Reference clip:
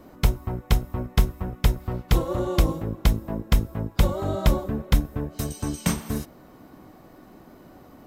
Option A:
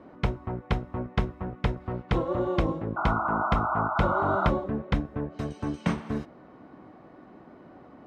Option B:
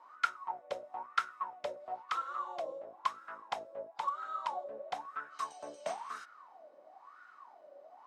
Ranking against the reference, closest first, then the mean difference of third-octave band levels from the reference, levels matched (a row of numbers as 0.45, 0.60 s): A, B; 6.0, 13.0 dB